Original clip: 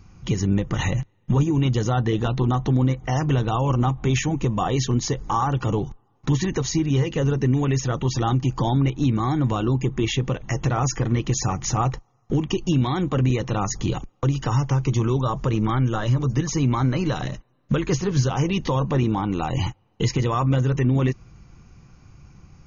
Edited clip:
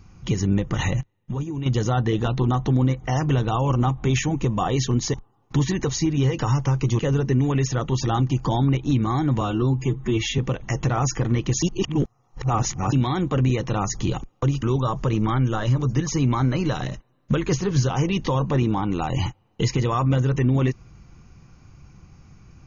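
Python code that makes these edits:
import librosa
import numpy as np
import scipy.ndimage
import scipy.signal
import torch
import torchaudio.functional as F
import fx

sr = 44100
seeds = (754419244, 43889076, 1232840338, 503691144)

y = fx.edit(x, sr, fx.clip_gain(start_s=1.01, length_s=0.65, db=-8.5),
    fx.cut(start_s=5.14, length_s=0.73),
    fx.stretch_span(start_s=9.54, length_s=0.65, factor=1.5),
    fx.reverse_span(start_s=11.43, length_s=1.3),
    fx.move(start_s=14.43, length_s=0.6, to_s=7.12), tone=tone)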